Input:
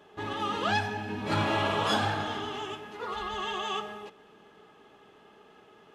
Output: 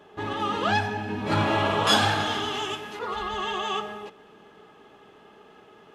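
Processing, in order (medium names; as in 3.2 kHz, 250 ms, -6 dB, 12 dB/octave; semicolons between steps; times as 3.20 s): treble shelf 2.3 kHz -3.5 dB, from 1.87 s +7.5 dB, from 2.99 s -2 dB; trim +4.5 dB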